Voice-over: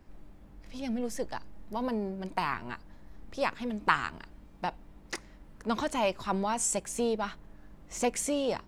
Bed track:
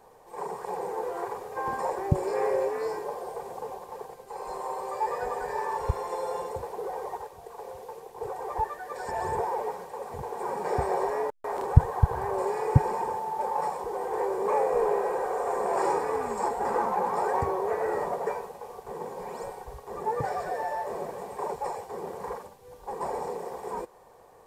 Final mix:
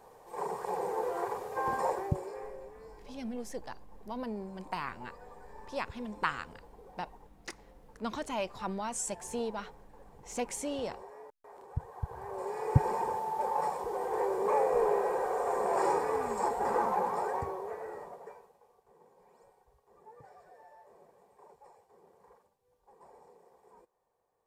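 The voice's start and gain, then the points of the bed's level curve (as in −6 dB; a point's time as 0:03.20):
2.35 s, −6.0 dB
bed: 0:01.91 −1 dB
0:02.57 −20.5 dB
0:11.67 −20.5 dB
0:12.89 −2.5 dB
0:16.95 −2.5 dB
0:18.85 −25 dB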